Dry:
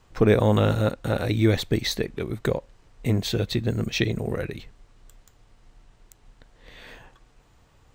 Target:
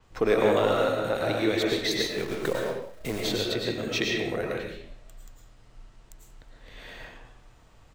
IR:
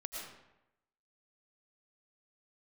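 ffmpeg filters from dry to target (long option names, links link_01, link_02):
-filter_complex "[0:a]acrossover=split=290|5200[link_01][link_02][link_03];[link_01]acompressor=threshold=-39dB:ratio=6[link_04];[link_04][link_02][link_03]amix=inputs=3:normalize=0,asettb=1/sr,asplit=3[link_05][link_06][link_07];[link_05]atrim=end=1.984[link_08];[link_06]atrim=start=1.98:end=3.22,asetpts=PTS-STARTPTS,afade=type=in:duration=0.004:curve=qsin,afade=type=out:start_time=1.236:duration=0.004:curve=qsin,acrusher=bits=7:dc=4:mix=0:aa=0.000001[link_09];[link_07]atrim=start=3.216[link_10];[link_08][link_09]acrossfade=duration=0.004:curve1=hsin:curve2=qsin[link_11];[link_11][link_10]acrossfade=duration=0.004:curve1=qsin:curve2=hsin,asplit=2[link_12][link_13];[link_13]volume=21dB,asoftclip=hard,volume=-21dB,volume=-9dB[link_14];[link_12][link_14]amix=inputs=2:normalize=0,asplit=4[link_15][link_16][link_17][link_18];[link_16]adelay=184,afreqshift=44,volume=-23dB[link_19];[link_17]adelay=368,afreqshift=88,volume=-30.3dB[link_20];[link_18]adelay=552,afreqshift=132,volume=-37.7dB[link_21];[link_15][link_19][link_20][link_21]amix=inputs=4:normalize=0[link_22];[1:a]atrim=start_sample=2205,afade=type=out:start_time=0.39:duration=0.01,atrim=end_sample=17640[link_23];[link_22][link_23]afir=irnorm=-1:irlink=0,adynamicequalizer=threshold=0.00501:dfrequency=6800:dqfactor=0.7:tfrequency=6800:tqfactor=0.7:attack=5:release=100:ratio=0.375:range=2:mode=cutabove:tftype=highshelf"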